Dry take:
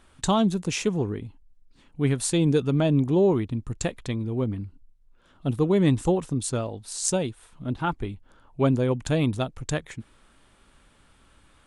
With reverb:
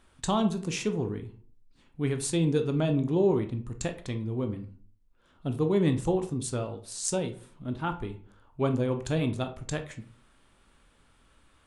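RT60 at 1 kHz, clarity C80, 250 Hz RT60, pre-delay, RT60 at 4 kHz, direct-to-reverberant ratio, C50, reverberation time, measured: 0.45 s, 17.5 dB, 0.55 s, 16 ms, 0.25 s, 6.5 dB, 12.0 dB, 0.45 s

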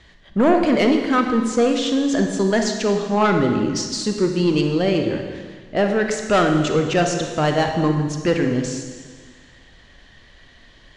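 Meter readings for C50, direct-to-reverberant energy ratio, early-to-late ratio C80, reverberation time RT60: 5.0 dB, 4.0 dB, 6.5 dB, 1.7 s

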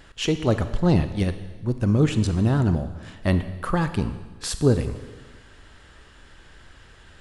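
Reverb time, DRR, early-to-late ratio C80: 1.3 s, 10.0 dB, 12.5 dB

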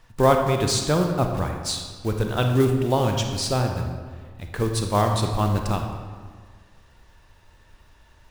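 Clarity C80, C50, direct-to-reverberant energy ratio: 6.5 dB, 4.5 dB, 3.5 dB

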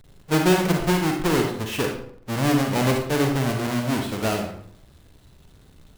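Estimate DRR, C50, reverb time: 2.0 dB, 4.5 dB, 0.60 s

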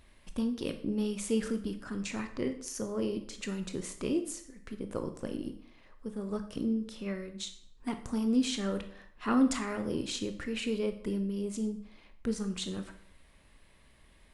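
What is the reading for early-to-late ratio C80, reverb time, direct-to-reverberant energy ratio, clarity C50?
14.5 dB, 0.60 s, 7.0 dB, 11.0 dB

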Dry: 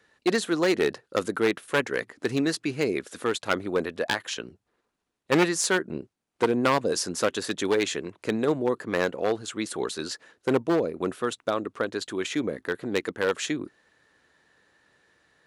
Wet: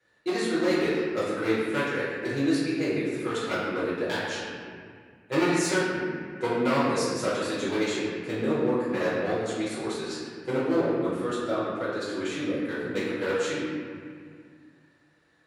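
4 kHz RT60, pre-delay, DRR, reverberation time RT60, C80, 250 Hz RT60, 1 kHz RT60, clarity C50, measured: 1.3 s, 3 ms, −12.5 dB, 2.0 s, 0.0 dB, 2.5 s, 2.0 s, −2.0 dB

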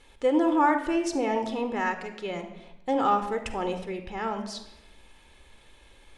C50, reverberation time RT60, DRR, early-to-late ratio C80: 9.0 dB, 0.95 s, 7.5 dB, 12.0 dB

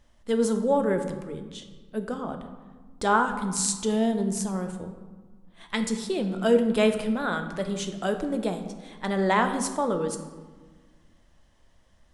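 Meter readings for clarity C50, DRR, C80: 8.5 dB, 6.0 dB, 10.5 dB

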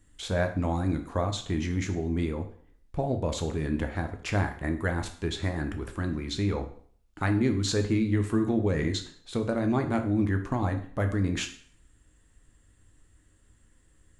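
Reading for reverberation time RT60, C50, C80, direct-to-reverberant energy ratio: 0.50 s, 10.5 dB, 14.0 dB, 5.5 dB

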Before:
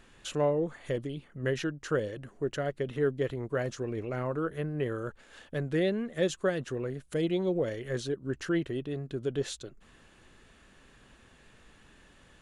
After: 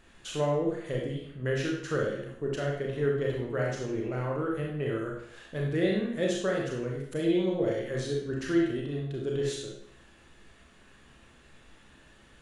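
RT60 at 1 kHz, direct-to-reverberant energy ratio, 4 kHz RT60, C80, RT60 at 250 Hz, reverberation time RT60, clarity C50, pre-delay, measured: 0.65 s, −2.0 dB, 0.60 s, 6.0 dB, 0.65 s, 0.65 s, 2.5 dB, 30 ms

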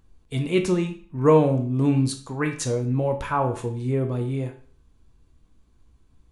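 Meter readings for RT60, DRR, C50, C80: 0.45 s, 3.5 dB, 10.0 dB, 14.5 dB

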